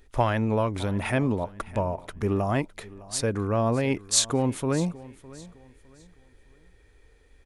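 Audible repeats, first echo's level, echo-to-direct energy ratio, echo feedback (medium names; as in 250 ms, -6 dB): 2, -19.5 dB, -19.0 dB, 32%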